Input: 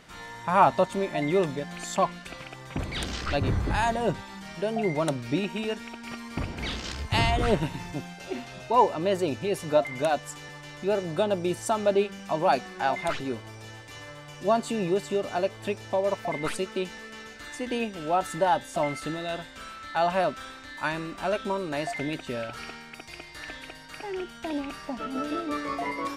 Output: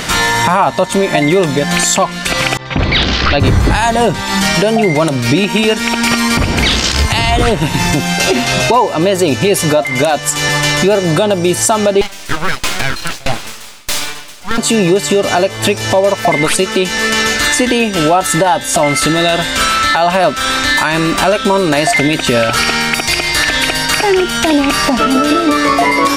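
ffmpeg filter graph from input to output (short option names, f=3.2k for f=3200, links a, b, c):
-filter_complex "[0:a]asettb=1/sr,asplit=3[a][b][c];[a]atrim=end=2.574[d];[b]atrim=start=2.57:end=3.4,asetpts=PTS-STARTPTS,afade=t=in:d=0.004:c=qsin,afade=t=out:st=0.826:d=0.004:c=qsin,lowpass=f=4.6k:w=0.5412,lowpass=f=4.6k:w=1.3066,agate=range=-33dB:threshold=-35dB:ratio=3:release=100:detection=peak[e];[c]atrim=start=3.396[f];[d][e]acrossfade=d=0.004:c1=hsin:c2=qsin[g];[g][f]acrossfade=d=0.004:c1=qsin:c2=hsin,asettb=1/sr,asplit=3[h][i][j];[h]atrim=end=12.014[k];[i]atrim=start=12.01:end=14.58,asetpts=PTS-STARTPTS,afade=t=in:d=0.004:c=qsin,afade=t=out:st=2.566:d=0.004:c=qsin,highpass=290,aeval=exprs='abs(val(0))':c=same,aeval=exprs='val(0)*pow(10,-26*if(lt(mod(1.6*n/s,1),2*abs(1.6)/1000),1-mod(1.6*n/s,1)/(2*abs(1.6)/1000),(mod(1.6*n/s,1)-2*abs(1.6)/1000)/(1-2*abs(1.6)/1000))/20)':c=same[l];[j]atrim=start=14.576[m];[k][l]acrossfade=d=0.004:c1=hsin:c2=qsin[n];[n][m]acrossfade=d=0.004:c1=qsin:c2=hsin,highshelf=f=3k:g=7.5,acompressor=threshold=-38dB:ratio=5,alimiter=level_in=31dB:limit=-1dB:release=50:level=0:latency=1,volume=-1dB"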